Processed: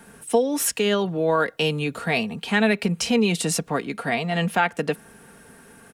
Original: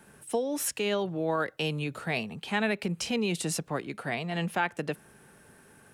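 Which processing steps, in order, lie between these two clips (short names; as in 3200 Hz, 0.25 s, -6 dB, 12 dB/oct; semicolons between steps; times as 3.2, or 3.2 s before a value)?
comb 4.3 ms, depth 41%; gain +7 dB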